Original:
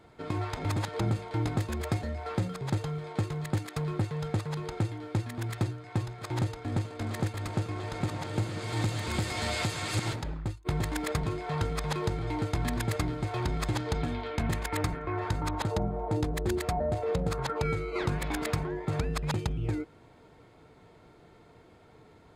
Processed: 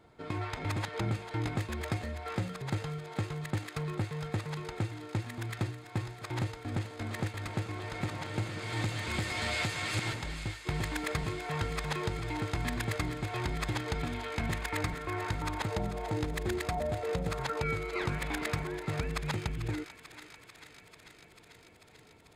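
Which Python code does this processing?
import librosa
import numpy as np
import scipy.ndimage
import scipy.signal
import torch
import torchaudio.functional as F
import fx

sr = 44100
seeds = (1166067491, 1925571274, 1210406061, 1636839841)

y = fx.dynamic_eq(x, sr, hz=2200.0, q=0.98, threshold_db=-49.0, ratio=4.0, max_db=6)
y = fx.echo_thinned(y, sr, ms=442, feedback_pct=81, hz=870.0, wet_db=-11)
y = F.gain(torch.from_numpy(y), -4.0).numpy()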